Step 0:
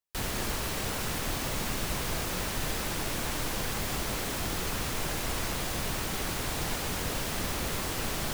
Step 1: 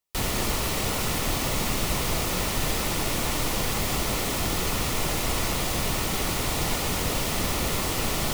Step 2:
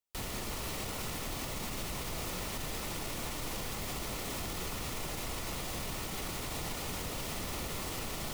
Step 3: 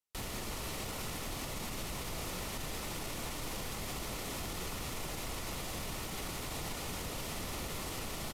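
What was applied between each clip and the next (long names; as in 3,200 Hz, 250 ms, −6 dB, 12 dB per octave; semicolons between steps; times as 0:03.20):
notch filter 1,600 Hz, Q 6.8; level +6 dB
brickwall limiter −20.5 dBFS, peak gain reduction 7.5 dB; level −8 dB
downsampling to 32,000 Hz; level −1.5 dB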